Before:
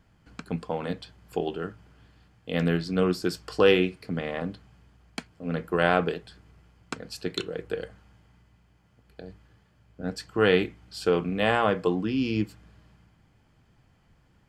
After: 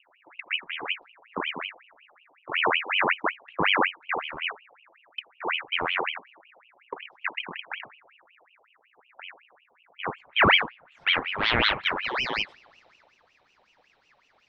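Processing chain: low-pass sweep 290 Hz -> 3.5 kHz, 9.65–12.87 s; ring modulator with a swept carrier 1.7 kHz, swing 65%, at 5.4 Hz

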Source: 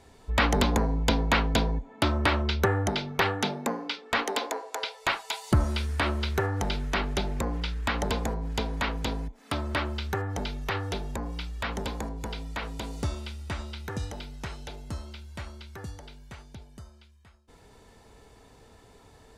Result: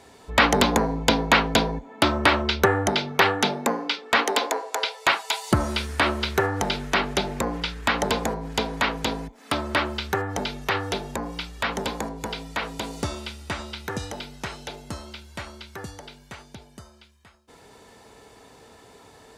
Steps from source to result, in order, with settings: high-pass 230 Hz 6 dB/octave; trim +7 dB

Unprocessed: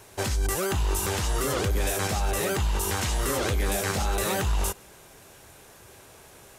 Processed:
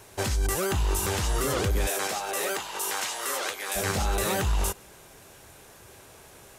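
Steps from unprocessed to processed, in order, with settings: 1.86–3.75 s: high-pass 340 Hz -> 810 Hz 12 dB/octave

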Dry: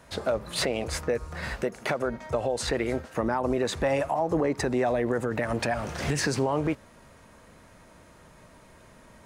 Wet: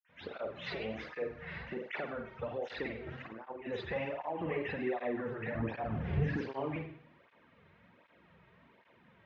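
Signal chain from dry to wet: high-pass 56 Hz; band-stop 630 Hz, Q 17; de-hum 130.1 Hz, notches 2; 2.85–3.57 s: compressor with a negative ratio -33 dBFS, ratio -0.5; 4.23–4.67 s: resonant low-pass 2.9 kHz, resonance Q 3.7; 5.46–6.27 s: tilt EQ -4 dB/octave; saturation -12.5 dBFS, distortion -20 dB; reverberation, pre-delay 46 ms; cancelling through-zero flanger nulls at 1.3 Hz, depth 4.2 ms; trim +2 dB

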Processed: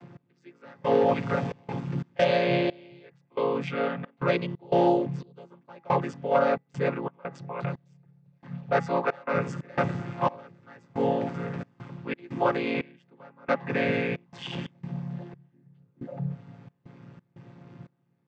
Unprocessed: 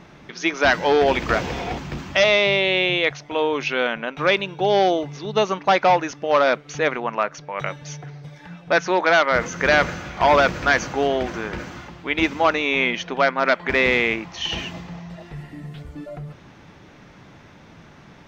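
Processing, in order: vocoder on a held chord minor triad, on A#2; de-hum 164.9 Hz, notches 12; trance gate "x....xxxx.xx.xx" 89 bpm -24 dB; trim -4.5 dB

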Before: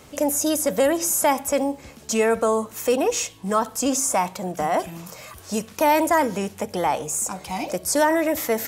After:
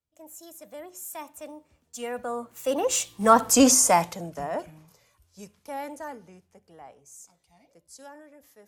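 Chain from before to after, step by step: Doppler pass-by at 3.50 s, 26 m/s, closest 8.9 m; three bands expanded up and down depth 70%

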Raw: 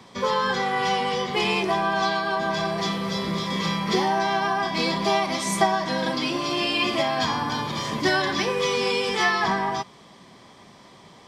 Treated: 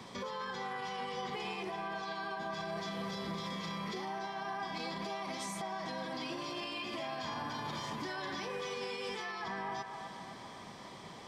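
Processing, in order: compression, threshold -33 dBFS, peak gain reduction 17.5 dB; peak limiter -31 dBFS, peak gain reduction 10.5 dB; on a send: feedback echo behind a band-pass 252 ms, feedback 59%, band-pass 1.1 kHz, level -6 dB; on the sum: trim -1 dB

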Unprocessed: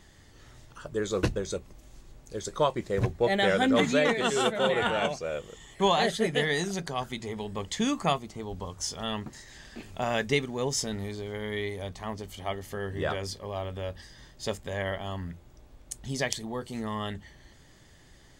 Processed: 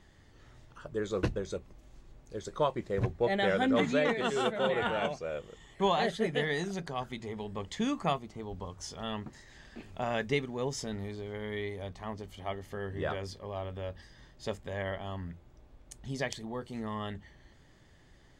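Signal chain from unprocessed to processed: treble shelf 5 kHz -11 dB; trim -3.5 dB

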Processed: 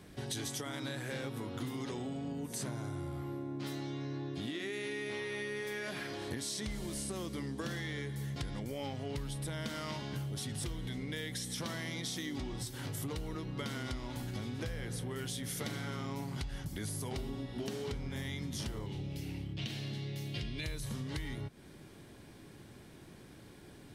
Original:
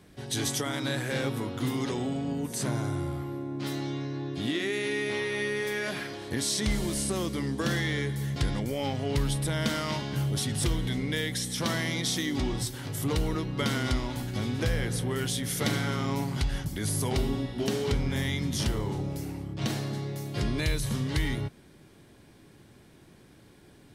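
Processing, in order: 18.86–20.64 s: FFT filter 120 Hz 0 dB, 1.2 kHz -9 dB, 2.9 kHz +8 dB, 7.5 kHz -5 dB; compression 6:1, threshold -38 dBFS, peak gain reduction 14.5 dB; trim +1 dB

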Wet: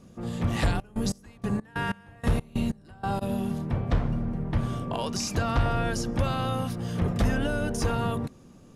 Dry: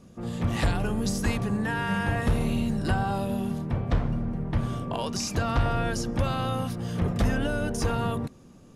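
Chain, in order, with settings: 0.73–3.21 s: trance gate ".x..x.x..x" 94 bpm -24 dB

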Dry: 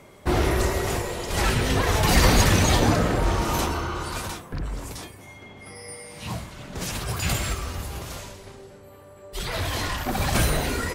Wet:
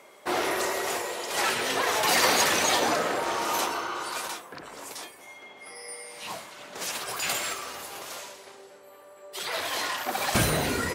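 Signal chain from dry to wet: high-pass 480 Hz 12 dB/octave, from 10.35 s 110 Hz

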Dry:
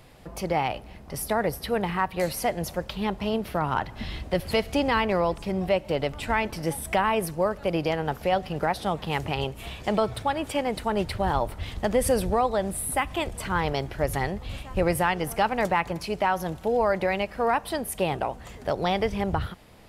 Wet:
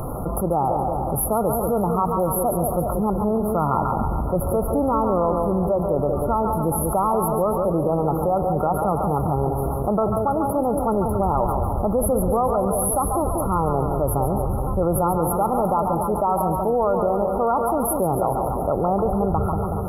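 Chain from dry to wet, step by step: two-band feedback delay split 750 Hz, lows 187 ms, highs 140 ms, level -7.5 dB; FFT band-reject 1.4–10 kHz; level flattener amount 70%

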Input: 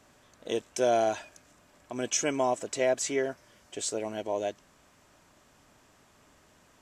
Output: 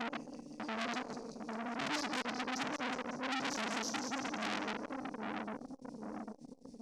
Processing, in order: slices played last to first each 85 ms, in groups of 7; expander -58 dBFS; graphic EQ 125/250/1000/2000/4000/8000 Hz -9/+11/-8/-9/-11/+5 dB; reverse; compression 8:1, threshold -31 dBFS, peak gain reduction 11 dB; reverse; peak limiter -28 dBFS, peak gain reduction 9.5 dB; formant shift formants -5 st; resonant low shelf 400 Hz +8 dB, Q 1.5; static phaser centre 350 Hz, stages 6; feedback comb 150 Hz, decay 0.4 s, harmonics all, mix 80%; two-band feedback delay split 310 Hz, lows 800 ms, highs 190 ms, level -4 dB; reverberation RT60 0.35 s, pre-delay 95 ms, DRR 15 dB; transformer saturation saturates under 3.6 kHz; trim +13 dB

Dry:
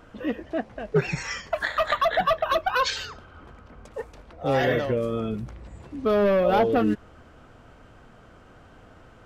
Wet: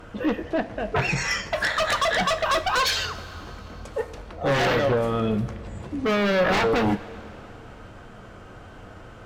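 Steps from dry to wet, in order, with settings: sine folder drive 11 dB, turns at -10 dBFS; two-slope reverb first 0.25 s, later 3.3 s, from -19 dB, DRR 8 dB; trim -8.5 dB

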